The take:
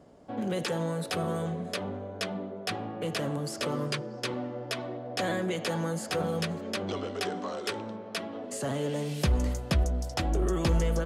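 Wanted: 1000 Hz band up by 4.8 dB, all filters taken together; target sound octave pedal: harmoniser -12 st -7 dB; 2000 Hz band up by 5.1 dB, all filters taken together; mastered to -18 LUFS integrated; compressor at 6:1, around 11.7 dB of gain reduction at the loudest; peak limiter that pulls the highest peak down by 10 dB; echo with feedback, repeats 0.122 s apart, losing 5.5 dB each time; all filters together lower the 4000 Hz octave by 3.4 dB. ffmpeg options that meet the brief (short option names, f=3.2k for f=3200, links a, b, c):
-filter_complex "[0:a]equalizer=f=1k:t=o:g=5.5,equalizer=f=2k:t=o:g=6.5,equalizer=f=4k:t=o:g=-7.5,acompressor=threshold=-33dB:ratio=6,alimiter=level_in=5dB:limit=-24dB:level=0:latency=1,volume=-5dB,aecho=1:1:122|244|366|488|610|732|854:0.531|0.281|0.149|0.079|0.0419|0.0222|0.0118,asplit=2[a][b];[b]asetrate=22050,aresample=44100,atempo=2,volume=-7dB[c];[a][c]amix=inputs=2:normalize=0,volume=18.5dB"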